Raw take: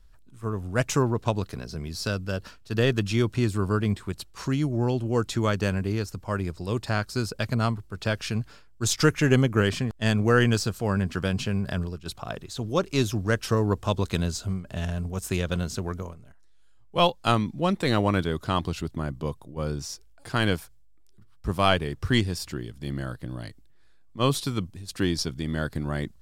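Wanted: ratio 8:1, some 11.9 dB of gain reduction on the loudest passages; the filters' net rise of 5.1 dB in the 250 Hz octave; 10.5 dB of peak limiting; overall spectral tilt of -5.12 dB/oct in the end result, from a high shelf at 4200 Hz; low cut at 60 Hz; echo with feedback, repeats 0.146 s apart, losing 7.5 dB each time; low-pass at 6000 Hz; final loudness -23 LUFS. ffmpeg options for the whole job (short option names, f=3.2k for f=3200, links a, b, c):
-af "highpass=60,lowpass=6k,equalizer=f=250:t=o:g=6.5,highshelf=f=4.2k:g=8.5,acompressor=threshold=-24dB:ratio=8,alimiter=limit=-21.5dB:level=0:latency=1,aecho=1:1:146|292|438|584|730:0.422|0.177|0.0744|0.0312|0.0131,volume=10dB"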